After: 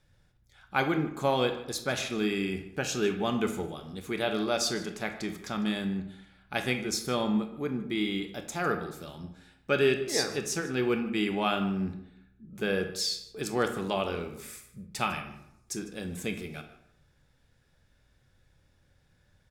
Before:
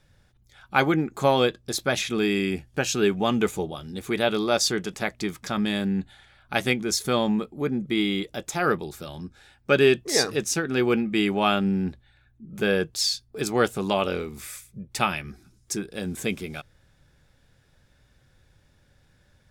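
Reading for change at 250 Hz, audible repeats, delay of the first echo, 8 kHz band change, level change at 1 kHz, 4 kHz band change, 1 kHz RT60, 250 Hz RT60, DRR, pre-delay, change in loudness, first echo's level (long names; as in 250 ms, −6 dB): −5.5 dB, 1, 152 ms, −6.0 dB, −5.5 dB, −6.0 dB, 0.75 s, 0.75 s, 6.0 dB, 23 ms, −5.5 dB, −18.5 dB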